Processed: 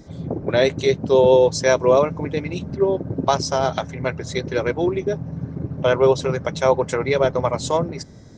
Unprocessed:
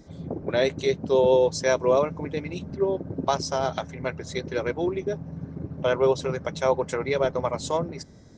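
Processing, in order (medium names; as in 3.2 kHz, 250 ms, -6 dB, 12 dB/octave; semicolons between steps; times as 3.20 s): peaking EQ 120 Hz +5.5 dB 0.27 oct; trim +5.5 dB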